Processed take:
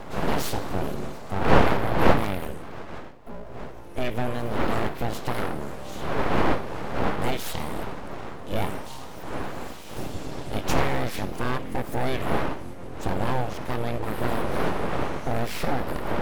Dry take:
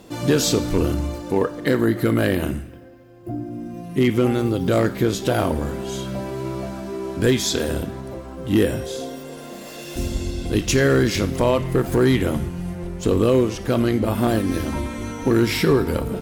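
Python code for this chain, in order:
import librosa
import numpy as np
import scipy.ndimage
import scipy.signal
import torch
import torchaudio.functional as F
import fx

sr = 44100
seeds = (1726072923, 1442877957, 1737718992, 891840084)

y = fx.dmg_wind(x, sr, seeds[0], corner_hz=540.0, level_db=-20.0)
y = np.abs(y)
y = fx.dynamic_eq(y, sr, hz=6800.0, q=1.1, threshold_db=-43.0, ratio=4.0, max_db=-5)
y = F.gain(torch.from_numpy(y), -6.0).numpy()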